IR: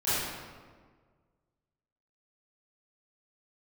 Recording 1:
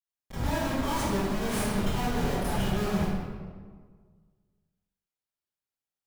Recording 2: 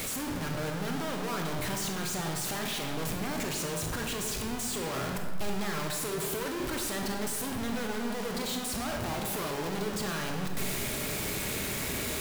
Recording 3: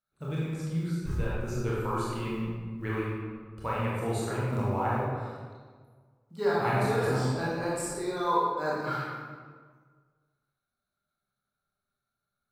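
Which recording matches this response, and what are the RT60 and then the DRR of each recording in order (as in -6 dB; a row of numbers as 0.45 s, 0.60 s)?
1; 1.6 s, 1.6 s, 1.6 s; -16.0 dB, 2.0 dB, -7.0 dB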